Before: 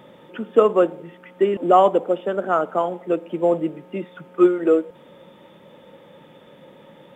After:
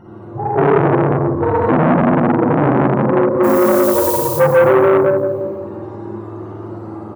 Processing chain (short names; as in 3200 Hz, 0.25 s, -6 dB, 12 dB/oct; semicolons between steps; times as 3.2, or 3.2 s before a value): spectrum mirrored in octaves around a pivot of 430 Hz; AGC gain up to 5 dB; 0.77–2.18 graphic EQ 125/250/500/1000/2000 Hz +8/+6/-9/+4/+11 dB; 3.43–4.12 added noise violet -33 dBFS; on a send: echo 0.176 s -5.5 dB; on the sum: Schroeder reverb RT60 1.5 s, DRR -7.5 dB; in parallel at 0 dB: compressor, threshold -21 dBFS, peak gain reduction 21.5 dB; on the sum: maximiser +0.5 dB; core saturation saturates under 710 Hz